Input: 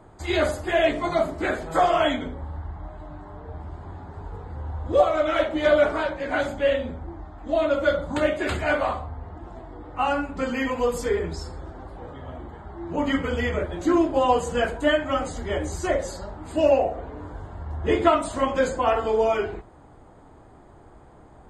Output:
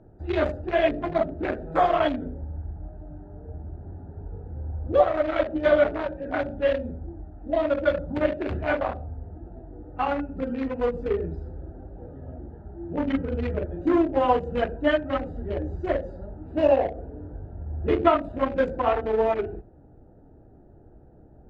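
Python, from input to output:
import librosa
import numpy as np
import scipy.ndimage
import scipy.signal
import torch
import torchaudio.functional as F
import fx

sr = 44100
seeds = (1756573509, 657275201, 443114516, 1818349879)

y = fx.wiener(x, sr, points=41)
y = scipy.signal.sosfilt(scipy.signal.butter(2, 3400.0, 'lowpass', fs=sr, output='sos'), y)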